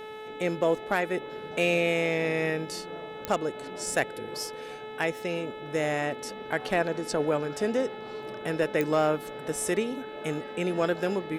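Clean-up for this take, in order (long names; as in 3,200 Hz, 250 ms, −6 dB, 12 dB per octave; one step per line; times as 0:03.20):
clipped peaks rebuilt −14.5 dBFS
click removal
hum removal 432.2 Hz, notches 9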